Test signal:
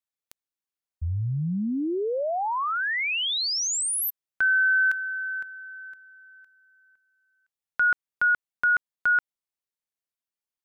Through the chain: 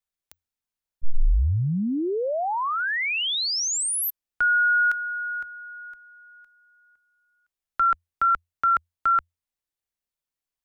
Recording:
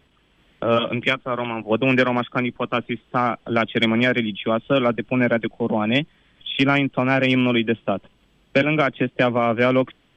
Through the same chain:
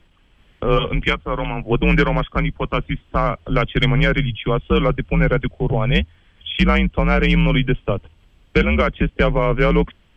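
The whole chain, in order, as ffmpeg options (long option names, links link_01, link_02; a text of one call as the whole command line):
ffmpeg -i in.wav -af "afreqshift=-86,lowshelf=frequency=66:gain=11.5,volume=1dB" out.wav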